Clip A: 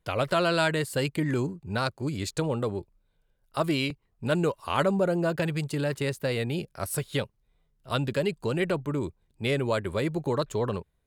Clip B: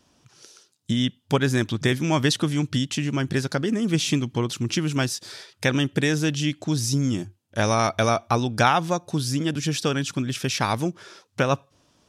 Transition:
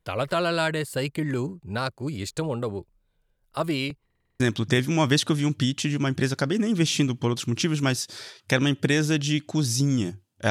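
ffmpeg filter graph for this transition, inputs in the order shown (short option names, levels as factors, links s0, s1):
-filter_complex "[0:a]apad=whole_dur=10.5,atrim=end=10.5,asplit=7[s0][s1][s2][s3][s4][s5][s6];[s0]atrim=end=4.102[s7];[s1]atrim=start=4.048:end=4.102[s8];[s2]atrim=start=4.048:end=4.102[s9];[s3]atrim=start=4.048:end=4.102[s10];[s4]atrim=start=4.048:end=4.102[s11];[s5]atrim=start=4.048:end=4.102[s12];[s6]atrim=start=4.048:end=4.102[s13];[1:a]atrim=start=1.528:end=7.63[s14];[s7][s8]acrossfade=d=0.004:c1=hsin:c2=hsin[s15];[s15][s9]acrossfade=d=0.004:c1=hsin:c2=hsin[s16];[s16][s10]acrossfade=d=0.004:c1=hsin:c2=hsin[s17];[s17][s11]acrossfade=d=0.004:c1=hsin:c2=hsin[s18];[s18][s12]acrossfade=d=0.004:c1=hsin:c2=hsin[s19];[s19][s13]acrossfade=d=0.004:c1=hsin:c2=hsin[s20];[s20][s14]acrossfade=d=0.004:c1=hsin:c2=hsin"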